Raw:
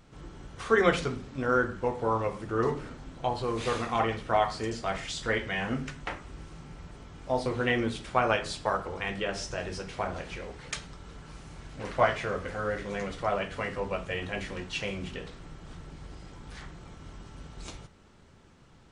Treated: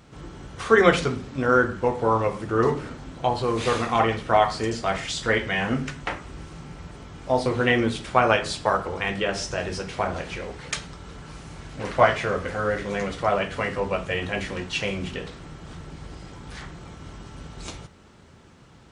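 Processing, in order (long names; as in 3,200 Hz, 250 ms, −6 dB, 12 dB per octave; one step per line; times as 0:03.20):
high-pass filter 48 Hz
level +6.5 dB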